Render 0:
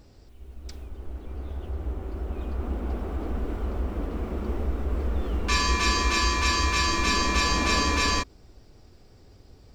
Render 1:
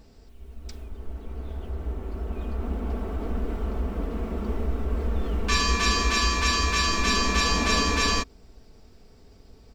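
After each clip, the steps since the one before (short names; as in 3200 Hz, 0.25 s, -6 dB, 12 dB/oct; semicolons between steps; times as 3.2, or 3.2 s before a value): comb 4.5 ms, depth 43%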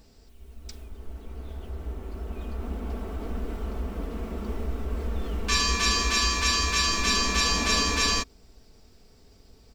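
high shelf 3100 Hz +7.5 dB; gain -3.5 dB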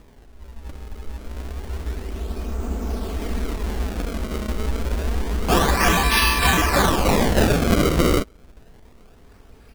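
decimation with a swept rate 29×, swing 160% 0.28 Hz; gain +6.5 dB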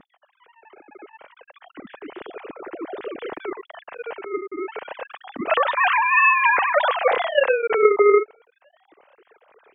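sine-wave speech; gain -1.5 dB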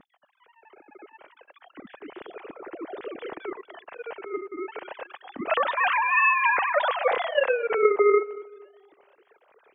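tape echo 0.233 s, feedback 36%, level -17 dB, low-pass 1400 Hz; gain -4.5 dB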